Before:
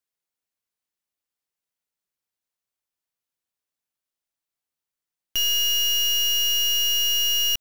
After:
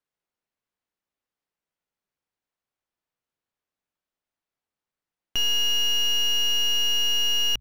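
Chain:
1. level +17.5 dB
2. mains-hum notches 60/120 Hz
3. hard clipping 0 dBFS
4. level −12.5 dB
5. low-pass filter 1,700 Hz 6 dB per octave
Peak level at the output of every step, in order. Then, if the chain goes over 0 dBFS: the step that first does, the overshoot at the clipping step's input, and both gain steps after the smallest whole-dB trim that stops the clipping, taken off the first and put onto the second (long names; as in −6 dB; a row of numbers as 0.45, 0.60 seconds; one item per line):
−4.0, −3.5, −3.5, −16.0, −17.0 dBFS
no step passes full scale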